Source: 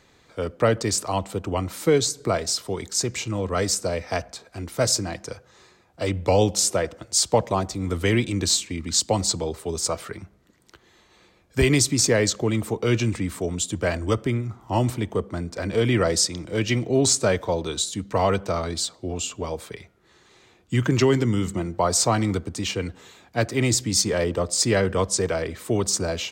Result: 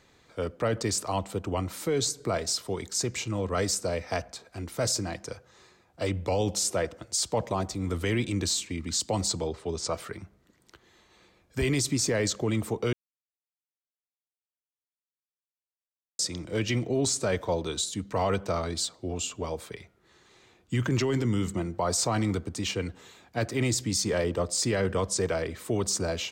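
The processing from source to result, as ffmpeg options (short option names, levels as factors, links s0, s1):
-filter_complex "[0:a]asplit=3[s0][s1][s2];[s0]afade=t=out:st=9.47:d=0.02[s3];[s1]lowpass=5500,afade=t=in:st=9.47:d=0.02,afade=t=out:st=9.92:d=0.02[s4];[s2]afade=t=in:st=9.92:d=0.02[s5];[s3][s4][s5]amix=inputs=3:normalize=0,asplit=3[s6][s7][s8];[s6]atrim=end=12.93,asetpts=PTS-STARTPTS,afade=t=out:st=12.926:d=0.004:c=hsin[s9];[s7]atrim=start=12.93:end=16.19,asetpts=PTS-STARTPTS,volume=0[s10];[s8]atrim=start=16.19,asetpts=PTS-STARTPTS,afade=t=in:d=0.004:c=hsin[s11];[s9][s10][s11]concat=n=3:v=0:a=1,alimiter=limit=0.188:level=0:latency=1:release=14,volume=0.668"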